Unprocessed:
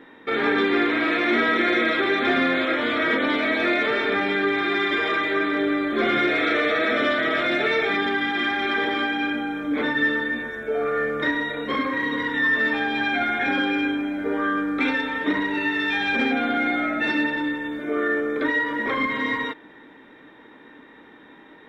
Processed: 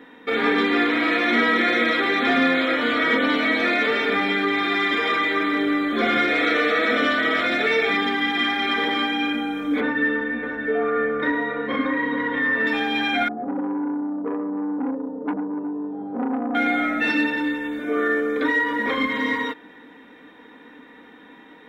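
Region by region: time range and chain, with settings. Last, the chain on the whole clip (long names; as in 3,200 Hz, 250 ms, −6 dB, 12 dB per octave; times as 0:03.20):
0:09.80–0:12.67: low-pass filter 2,200 Hz + single-tap delay 630 ms −9 dB
0:13.28–0:16.55: elliptic band-pass filter 110–660 Hz, stop band 50 dB + saturating transformer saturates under 820 Hz
whole clip: high-pass filter 46 Hz; high-shelf EQ 4,200 Hz +5.5 dB; comb filter 4.1 ms, depth 49%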